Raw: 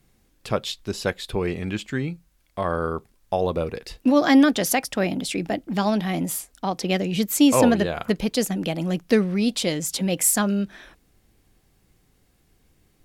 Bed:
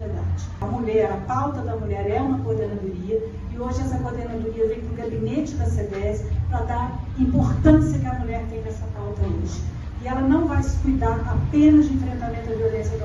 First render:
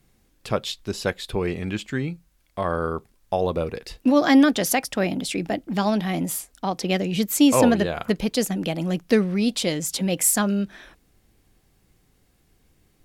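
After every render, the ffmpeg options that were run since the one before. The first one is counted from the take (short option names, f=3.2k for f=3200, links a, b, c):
-af anull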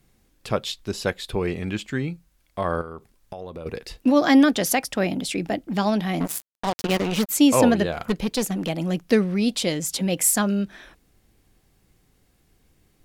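-filter_complex "[0:a]asettb=1/sr,asplit=3[a][b][c];[a]atrim=end=2.814[d];[b]atrim=start=2.81:end=3.66,asetpts=PTS-STARTPTS,afade=t=in:d=0.004:c=qsin,afade=t=out:st=0.846:d=0.004:c=qsin,acompressor=threshold=-33dB:ratio=5:attack=3.2:release=140:knee=1:detection=peak[e];[c]atrim=start=3.656[f];[d][e]acrossfade=d=0.004:c1=hsin:c2=qsin[g];[g][f]acrossfade=d=0.004:c1=qsin:c2=hsin,asettb=1/sr,asplit=3[h][i][j];[h]atrim=end=6.204[k];[i]atrim=start=6.2:end=7.29,asetpts=PTS-STARTPTS,afade=t=in:d=0.004:c=qsin,afade=t=out:st=1.086:d=0.004:c=qsin,acrusher=bits=3:mix=0:aa=0.5[l];[j]atrim=start=7.286[m];[k][l]acrossfade=d=0.004:c1=hsin:c2=qsin[n];[n][m]acrossfade=d=0.004:c1=qsin:c2=hsin,asettb=1/sr,asplit=3[o][p][q];[o]atrim=end=7.924[r];[p]atrim=start=7.92:end=8.69,asetpts=PTS-STARTPTS,afade=t=in:d=0.004:c=qsin,afade=t=out:st=0.766:d=0.004:c=qsin,aeval=exprs='clip(val(0),-1,0.0794)':c=same[s];[q]atrim=start=8.686[t];[r][s]acrossfade=d=0.004:c1=hsin:c2=qsin[u];[u][t]acrossfade=d=0.004:c1=qsin:c2=hsin"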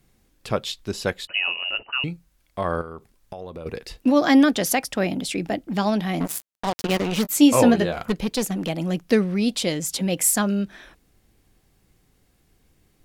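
-filter_complex "[0:a]asettb=1/sr,asplit=3[a][b][c];[a]atrim=end=1.274[d];[b]atrim=start=1.27:end=2.04,asetpts=PTS-STARTPTS,afade=t=in:d=0.004:c=qsin,afade=t=out:st=0.766:d=0.004:c=qsin,lowpass=f=2.6k:t=q:w=0.5098,lowpass=f=2.6k:t=q:w=0.6013,lowpass=f=2.6k:t=q:w=0.9,lowpass=f=2.6k:t=q:w=2.563,afreqshift=-3000[e];[c]atrim=start=2.036[f];[d][e]acrossfade=d=0.004:c1=hsin:c2=qsin[g];[g][f]acrossfade=d=0.004:c1=qsin:c2=hsin,asettb=1/sr,asplit=3[h][i][j];[h]atrim=end=7.234[k];[i]atrim=start=7.23:end=8.01,asetpts=PTS-STARTPTS,afade=t=in:d=0.004:c=qsin,afade=t=out:st=0.776:d=0.004:c=qsin,asplit=2[l][m];[m]adelay=17,volume=-8dB[n];[l][n]amix=inputs=2:normalize=0,atrim=end_sample=34398[o];[j]atrim=start=8.006[p];[k][o]acrossfade=d=0.004:c1=hsin:c2=qsin[q];[q][p]acrossfade=d=0.004:c1=qsin:c2=hsin"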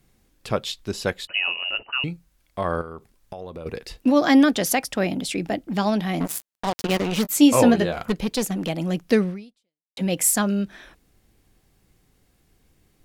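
-filter_complex "[0:a]asplit=2[a][b];[a]atrim=end=9.97,asetpts=PTS-STARTPTS,afade=t=out:st=9.29:d=0.68:c=exp[c];[b]atrim=start=9.97,asetpts=PTS-STARTPTS,afade=t=in:d=0.004:c=hsin[d];[c][d]concat=n=2:v=0:a=1"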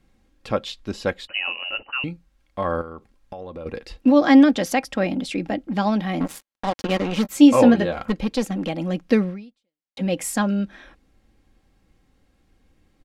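-af "aemphasis=mode=reproduction:type=50fm,aecho=1:1:3.7:0.39"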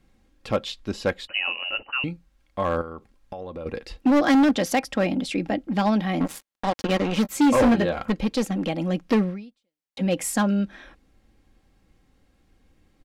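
-af "volume=14.5dB,asoftclip=hard,volume=-14.5dB"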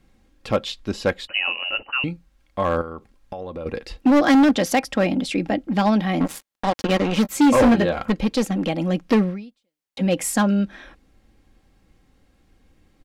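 -af "volume=3dB"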